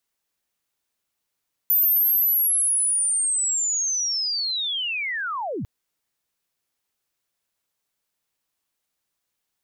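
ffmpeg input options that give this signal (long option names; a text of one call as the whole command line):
ffmpeg -f lavfi -i "aevalsrc='pow(10,(-15.5-10.5*t/3.95)/20)*sin(2*PI*(14000*t-13924*t*t/(2*3.95)))':duration=3.95:sample_rate=44100" out.wav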